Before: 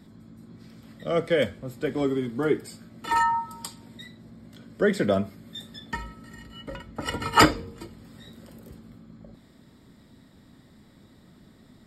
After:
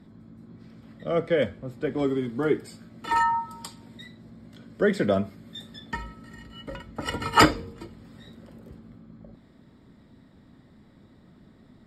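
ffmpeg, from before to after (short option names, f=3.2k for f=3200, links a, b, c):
-af "asetnsamples=n=441:p=0,asendcmd='1.99 lowpass f 5500;6.58 lowpass f 10000;7.73 lowpass f 3900;8.35 lowpass f 2200',lowpass=f=2.2k:p=1"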